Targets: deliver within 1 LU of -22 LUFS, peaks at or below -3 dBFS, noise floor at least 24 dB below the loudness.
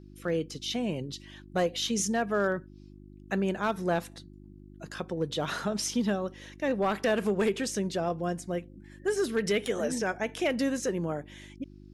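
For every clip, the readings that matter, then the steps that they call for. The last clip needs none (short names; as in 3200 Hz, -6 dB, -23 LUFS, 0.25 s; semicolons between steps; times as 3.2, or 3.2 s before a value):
clipped 0.4%; flat tops at -19.5 dBFS; hum 50 Hz; harmonics up to 350 Hz; hum level -48 dBFS; loudness -30.5 LUFS; peak -19.5 dBFS; loudness target -22.0 LUFS
-> clip repair -19.5 dBFS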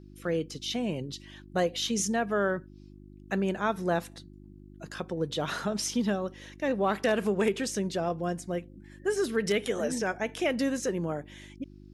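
clipped 0.0%; hum 50 Hz; harmonics up to 350 Hz; hum level -48 dBFS
-> de-hum 50 Hz, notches 7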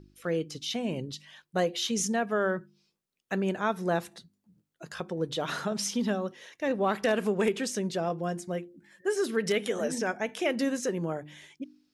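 hum none; loudness -30.5 LUFS; peak -12.5 dBFS; loudness target -22.0 LUFS
-> gain +8.5 dB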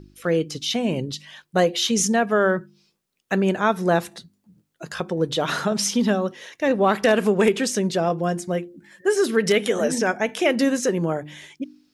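loudness -22.0 LUFS; peak -4.0 dBFS; noise floor -72 dBFS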